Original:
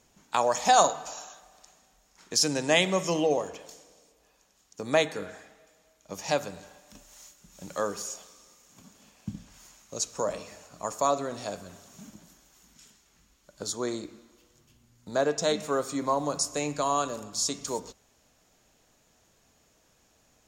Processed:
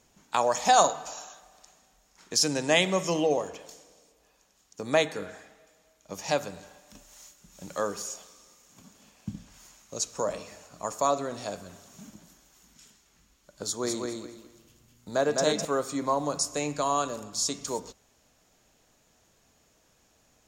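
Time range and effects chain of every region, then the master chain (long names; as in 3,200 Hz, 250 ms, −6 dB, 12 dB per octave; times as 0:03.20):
0:13.63–0:15.65: high-shelf EQ 9,200 Hz +4.5 dB + repeating echo 206 ms, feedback 23%, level −3.5 dB
whole clip: no processing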